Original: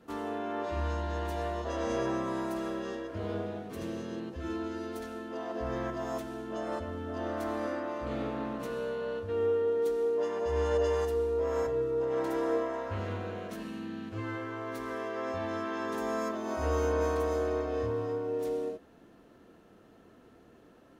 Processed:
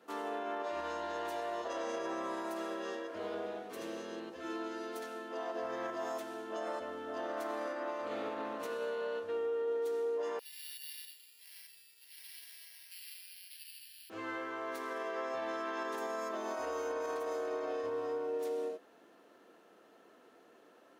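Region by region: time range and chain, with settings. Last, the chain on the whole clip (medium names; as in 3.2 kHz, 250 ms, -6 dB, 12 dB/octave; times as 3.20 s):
10.39–14.10 s: inverse Chebyshev high-pass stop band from 1.3 kHz + careless resampling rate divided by 6×, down filtered, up zero stuff
whole clip: high-pass 420 Hz 12 dB/octave; peak limiter -29.5 dBFS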